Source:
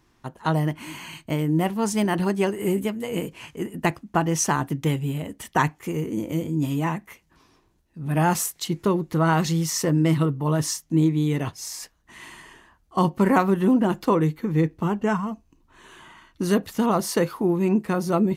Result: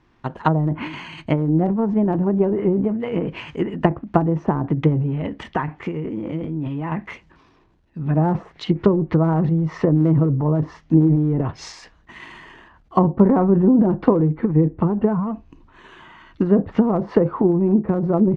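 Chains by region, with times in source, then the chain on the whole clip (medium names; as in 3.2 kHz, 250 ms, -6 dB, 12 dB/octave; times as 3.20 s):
5.26–6.92 s: peaking EQ 11 kHz -14 dB 1.9 oct + compression 2:1, threshold -30 dBFS + tape noise reduction on one side only encoder only
whole clip: low-pass that closes with the level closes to 660 Hz, closed at -20 dBFS; low-pass 3.2 kHz 12 dB/octave; transient shaper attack +6 dB, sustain +10 dB; trim +2.5 dB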